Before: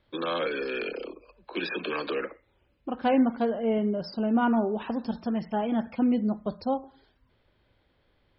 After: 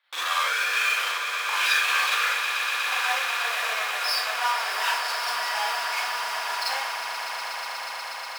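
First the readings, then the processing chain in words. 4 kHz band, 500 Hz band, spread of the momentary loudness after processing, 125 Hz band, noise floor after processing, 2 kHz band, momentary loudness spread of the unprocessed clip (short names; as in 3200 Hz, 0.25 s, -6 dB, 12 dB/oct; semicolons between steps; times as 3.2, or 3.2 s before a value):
+16.0 dB, -9.5 dB, 9 LU, under -40 dB, -35 dBFS, +15.0 dB, 13 LU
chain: in parallel at -11 dB: fuzz box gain 48 dB, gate -48 dBFS; on the sum: compressor 3:1, threshold -28 dBFS, peak gain reduction 10 dB; HPF 970 Hz 24 dB/oct; bell 1800 Hz +2.5 dB; on a send: swelling echo 0.121 s, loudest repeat 8, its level -11.5 dB; on the sum: Schroeder reverb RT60 0.38 s, combs from 32 ms, DRR -5.5 dB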